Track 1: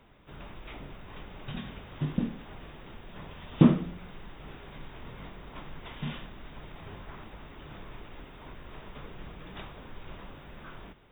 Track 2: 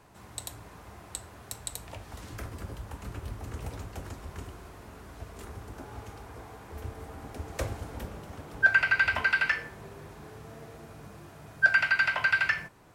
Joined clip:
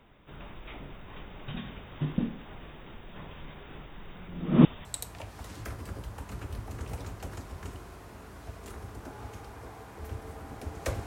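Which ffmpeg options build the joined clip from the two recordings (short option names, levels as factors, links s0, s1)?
-filter_complex "[0:a]apad=whole_dur=11.06,atrim=end=11.06,asplit=2[s0][s1];[s0]atrim=end=3.412[s2];[s1]atrim=start=3.408:end=4.852,asetpts=PTS-STARTPTS,areverse[s3];[1:a]atrim=start=1.578:end=7.79[s4];[s2][s3]acrossfade=d=0.004:c1=hsin:c2=hsin[s5];[s5][s4]acrossfade=d=0.004:c1=hsin:c2=hsin"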